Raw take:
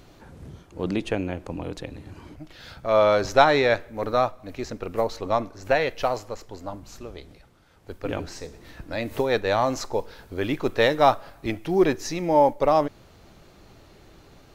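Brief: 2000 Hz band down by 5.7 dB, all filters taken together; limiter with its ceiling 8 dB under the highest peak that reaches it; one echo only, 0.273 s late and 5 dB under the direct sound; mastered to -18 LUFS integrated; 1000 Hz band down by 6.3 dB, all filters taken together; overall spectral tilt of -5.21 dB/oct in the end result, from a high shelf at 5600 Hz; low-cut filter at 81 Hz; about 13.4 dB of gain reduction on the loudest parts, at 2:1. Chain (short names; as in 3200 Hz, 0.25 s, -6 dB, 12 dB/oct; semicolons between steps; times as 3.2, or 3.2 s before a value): HPF 81 Hz; bell 1000 Hz -8 dB; bell 2000 Hz -4 dB; high shelf 5600 Hz -4 dB; compressor 2:1, threshold -40 dBFS; limiter -28 dBFS; echo 0.273 s -5 dB; gain +21.5 dB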